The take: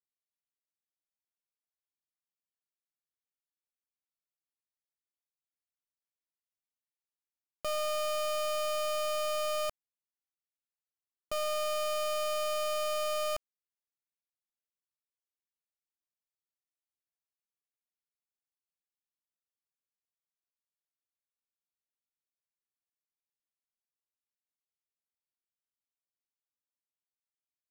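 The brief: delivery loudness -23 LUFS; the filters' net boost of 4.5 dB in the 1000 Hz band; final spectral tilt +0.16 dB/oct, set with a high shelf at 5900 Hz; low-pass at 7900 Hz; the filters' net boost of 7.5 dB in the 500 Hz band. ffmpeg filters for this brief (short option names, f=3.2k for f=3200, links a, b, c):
-af "lowpass=7.9k,equalizer=f=500:t=o:g=8,equalizer=f=1k:t=o:g=4.5,highshelf=f=5.9k:g=5.5,volume=4dB"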